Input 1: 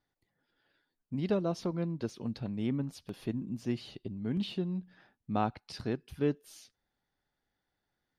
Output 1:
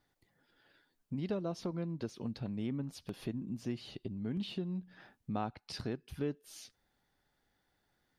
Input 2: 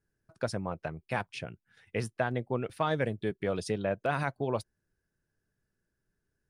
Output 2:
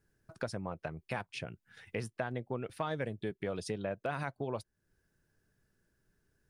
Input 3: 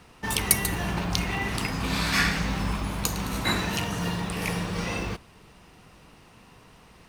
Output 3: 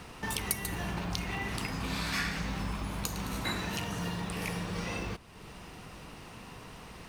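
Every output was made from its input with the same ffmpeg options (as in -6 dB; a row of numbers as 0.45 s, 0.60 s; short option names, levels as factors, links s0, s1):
-af "acompressor=threshold=0.00355:ratio=2,volume=2"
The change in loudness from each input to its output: -4.5 LU, -5.5 LU, -7.5 LU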